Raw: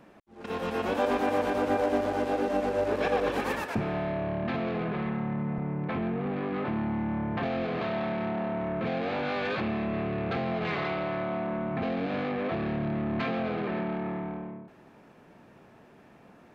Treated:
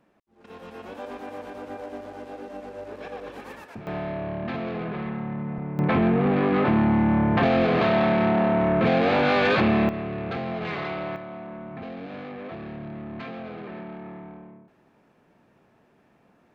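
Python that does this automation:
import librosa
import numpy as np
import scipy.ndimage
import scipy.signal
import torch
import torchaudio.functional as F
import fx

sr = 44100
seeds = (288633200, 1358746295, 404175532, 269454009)

y = fx.gain(x, sr, db=fx.steps((0.0, -10.5), (3.87, 0.0), (5.79, 10.0), (9.89, 0.0), (11.16, -6.5)))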